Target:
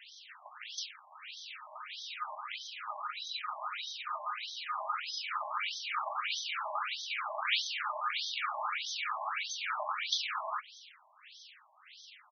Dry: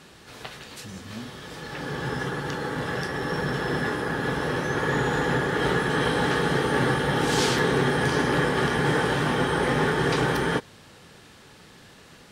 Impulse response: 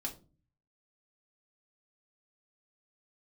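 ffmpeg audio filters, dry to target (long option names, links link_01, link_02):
-filter_complex "[0:a]aderivative,asplit=2[link_01][link_02];[1:a]atrim=start_sample=2205,lowshelf=frequency=230:gain=9.5[link_03];[link_02][link_03]afir=irnorm=-1:irlink=0,volume=-19.5dB[link_04];[link_01][link_04]amix=inputs=2:normalize=0,asetrate=32097,aresample=44100,atempo=1.37395,afftfilt=real='re*between(b*sr/1024,790*pow(4500/790,0.5+0.5*sin(2*PI*1.6*pts/sr))/1.41,790*pow(4500/790,0.5+0.5*sin(2*PI*1.6*pts/sr))*1.41)':imag='im*between(b*sr/1024,790*pow(4500/790,0.5+0.5*sin(2*PI*1.6*pts/sr))/1.41,790*pow(4500/790,0.5+0.5*sin(2*PI*1.6*pts/sr))*1.41)':win_size=1024:overlap=0.75,volume=8.5dB"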